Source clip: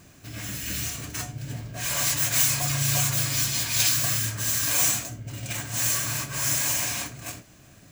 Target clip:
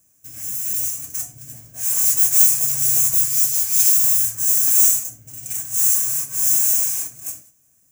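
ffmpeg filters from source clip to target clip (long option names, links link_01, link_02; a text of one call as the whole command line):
ffmpeg -i in.wav -af "aexciter=amount=7:drive=7.8:freq=5900,agate=range=-10dB:threshold=-35dB:ratio=16:detection=peak,volume=-10.5dB" out.wav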